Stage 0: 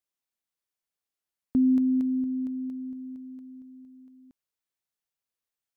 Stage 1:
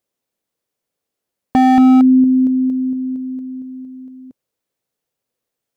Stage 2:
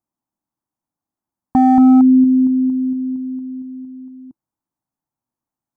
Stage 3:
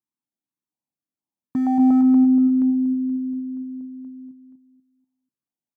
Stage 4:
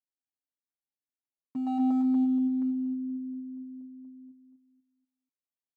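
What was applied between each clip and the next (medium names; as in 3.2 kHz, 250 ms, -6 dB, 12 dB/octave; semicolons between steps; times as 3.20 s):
ten-band graphic EQ 125 Hz +7 dB, 250 Hz +6 dB, 500 Hz +11 dB; wavefolder -12.5 dBFS; trim +7.5 dB
FFT filter 320 Hz 0 dB, 460 Hz -19 dB, 880 Hz +3 dB, 3 kHz -23 dB, 6.2 kHz -11 dB
high-pass 130 Hz; on a send: feedback delay 244 ms, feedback 35%, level -7 dB; on the sum: step-sequenced notch 4.2 Hz 610–1600 Hz; trim -7.5 dB
local Wiener filter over 25 samples; high-pass 430 Hz 6 dB/octave; comb 7.5 ms, depth 75%; trim -9 dB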